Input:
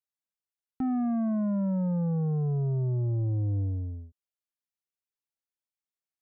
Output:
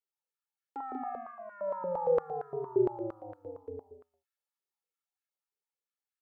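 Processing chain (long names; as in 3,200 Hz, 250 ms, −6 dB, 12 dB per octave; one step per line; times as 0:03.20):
source passing by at 0:02.65, 20 m/s, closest 19 metres
comb filter 2.3 ms, depth 87%
loudspeakers that aren't time-aligned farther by 46 metres −12 dB, 65 metres −6 dB
high-pass on a step sequencer 8.7 Hz 400–1,500 Hz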